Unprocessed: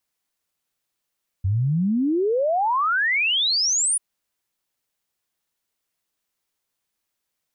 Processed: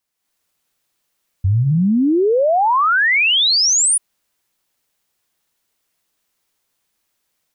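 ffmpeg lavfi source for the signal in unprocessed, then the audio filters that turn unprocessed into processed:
-f lavfi -i "aevalsrc='0.126*clip(min(t,2.54-t)/0.01,0,1)*sin(2*PI*90*2.54/log(10000/90)*(exp(log(10000/90)*t/2.54)-1))':duration=2.54:sample_rate=44100"
-af "bandreject=frequency=63.37:width_type=h:width=4,bandreject=frequency=126.74:width_type=h:width=4,dynaudnorm=framelen=160:gausssize=3:maxgain=8.5dB,alimiter=limit=-11.5dB:level=0:latency=1:release=18"

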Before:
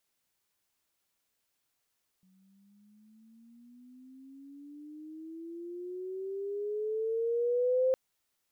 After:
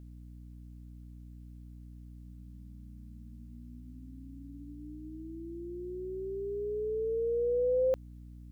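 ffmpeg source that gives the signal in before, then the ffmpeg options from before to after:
-f lavfi -i "aevalsrc='pow(10,(-23+39.5*(t/5.71-1))/20)*sin(2*PI*185*5.71/(18*log(2)/12)*(exp(18*log(2)/12*t/5.71)-1))':duration=5.71:sample_rate=44100"
-af "aeval=exprs='val(0)+0.00447*(sin(2*PI*60*n/s)+sin(2*PI*2*60*n/s)/2+sin(2*PI*3*60*n/s)/3+sin(2*PI*4*60*n/s)/4+sin(2*PI*5*60*n/s)/5)':channel_layout=same"

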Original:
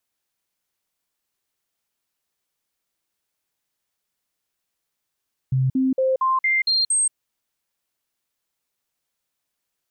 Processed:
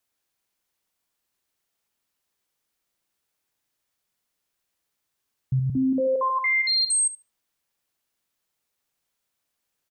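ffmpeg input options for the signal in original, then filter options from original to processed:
-f lavfi -i "aevalsrc='0.15*clip(min(mod(t,0.23),0.18-mod(t,0.23))/0.005,0,1)*sin(2*PI*131*pow(2,floor(t/0.23)/1)*mod(t,0.23))':duration=1.61:sample_rate=44100"
-filter_complex "[0:a]asplit=2[link_01][link_02];[link_02]adelay=72,lowpass=frequency=2200:poles=1,volume=-6dB,asplit=2[link_03][link_04];[link_04]adelay=72,lowpass=frequency=2200:poles=1,volume=0.37,asplit=2[link_05][link_06];[link_06]adelay=72,lowpass=frequency=2200:poles=1,volume=0.37,asplit=2[link_07][link_08];[link_08]adelay=72,lowpass=frequency=2200:poles=1,volume=0.37[link_09];[link_03][link_05][link_07][link_09]amix=inputs=4:normalize=0[link_10];[link_01][link_10]amix=inputs=2:normalize=0,alimiter=limit=-18dB:level=0:latency=1:release=26"

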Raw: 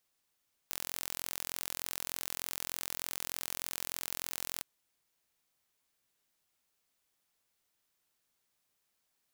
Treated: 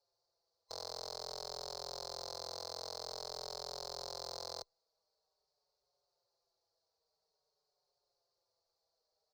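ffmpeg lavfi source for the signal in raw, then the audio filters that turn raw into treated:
-f lavfi -i "aevalsrc='0.316*eq(mod(n,1018),0)':duration=3.92:sample_rate=44100"
-filter_complex "[0:a]afftfilt=real='real(if(lt(b,960),b+48*(1-2*mod(floor(b/48),2)),b),0)':imag='imag(if(lt(b,960),b+48*(1-2*mod(floor(b/48),2)),b),0)':win_size=2048:overlap=0.75,firequalizer=gain_entry='entry(130,0);entry(270,-18);entry(410,11);entry(590,12);entry(1900,-16);entry(3000,-19);entry(4300,9);entry(6700,-7);entry(10000,-24)':delay=0.05:min_phase=1,asplit=2[link_01][link_02];[link_02]adelay=5.2,afreqshift=-0.49[link_03];[link_01][link_03]amix=inputs=2:normalize=1"

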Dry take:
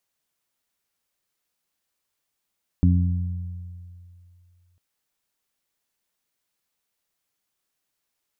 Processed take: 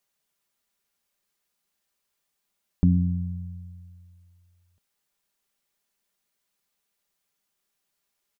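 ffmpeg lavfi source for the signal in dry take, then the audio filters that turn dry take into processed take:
-f lavfi -i "aevalsrc='0.188*pow(10,-3*t/2.48)*sin(2*PI*88.6*t)+0.133*pow(10,-3*t/1.56)*sin(2*PI*177.2*t)+0.0794*pow(10,-3*t/0.88)*sin(2*PI*265.8*t)':duration=1.95:sample_rate=44100"
-af "aecho=1:1:5:0.4"

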